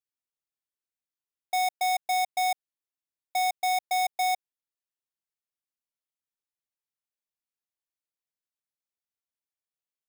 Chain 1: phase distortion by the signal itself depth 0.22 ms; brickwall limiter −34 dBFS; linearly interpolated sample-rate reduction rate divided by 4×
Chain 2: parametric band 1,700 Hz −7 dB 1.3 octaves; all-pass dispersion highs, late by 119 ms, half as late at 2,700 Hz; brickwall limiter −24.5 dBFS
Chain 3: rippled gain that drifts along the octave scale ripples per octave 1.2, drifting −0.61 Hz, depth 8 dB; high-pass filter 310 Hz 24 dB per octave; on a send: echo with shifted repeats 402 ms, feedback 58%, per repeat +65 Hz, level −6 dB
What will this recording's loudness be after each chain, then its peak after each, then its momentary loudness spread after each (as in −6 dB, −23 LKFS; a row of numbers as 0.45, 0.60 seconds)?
−37.0, −32.5, −28.5 LKFS; −34.0, −24.5, −14.0 dBFS; 6, 7, 16 LU